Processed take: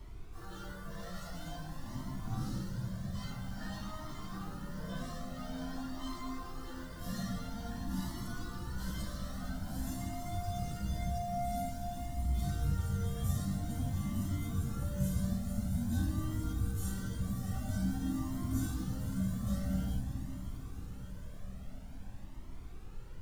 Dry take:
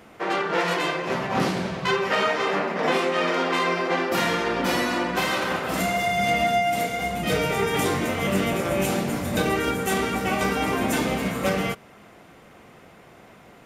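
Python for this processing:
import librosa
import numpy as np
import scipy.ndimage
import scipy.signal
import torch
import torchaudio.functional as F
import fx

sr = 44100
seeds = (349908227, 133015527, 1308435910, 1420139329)

p1 = fx.quant_dither(x, sr, seeds[0], bits=6, dither='none')
p2 = x + (p1 * librosa.db_to_amplitude(-3.0))
p3 = fx.low_shelf(p2, sr, hz=410.0, db=2.0)
p4 = fx.fixed_phaser(p3, sr, hz=1000.0, stages=4)
p5 = fx.room_shoebox(p4, sr, seeds[1], volume_m3=290.0, walls='furnished', distance_m=3.2)
p6 = fx.stretch_vocoder_free(p5, sr, factor=1.7)
p7 = scipy.signal.sosfilt(scipy.signal.butter(2, 68.0, 'highpass', fs=sr, output='sos'), p6)
p8 = fx.tone_stack(p7, sr, knobs='10-0-1')
p9 = fx.dmg_noise_colour(p8, sr, seeds[2], colour='brown', level_db=-48.0)
p10 = p9 + fx.echo_diffused(p9, sr, ms=613, feedback_pct=66, wet_db=-11.0, dry=0)
p11 = fx.comb_cascade(p10, sr, direction='rising', hz=0.49)
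y = p11 * librosa.db_to_amplitude(4.5)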